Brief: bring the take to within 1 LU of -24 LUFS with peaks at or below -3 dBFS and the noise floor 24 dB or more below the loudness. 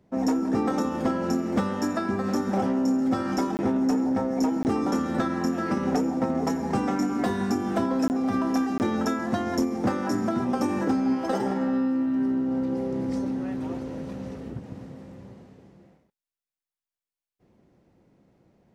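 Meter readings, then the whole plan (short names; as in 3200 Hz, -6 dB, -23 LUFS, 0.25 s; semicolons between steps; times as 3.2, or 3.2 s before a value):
clipped 0.4%; flat tops at -17.0 dBFS; dropouts 4; longest dropout 19 ms; loudness -26.0 LUFS; peak -17.0 dBFS; loudness target -24.0 LUFS
-> clip repair -17 dBFS; interpolate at 3.57/4.63/8.08/8.78, 19 ms; gain +2 dB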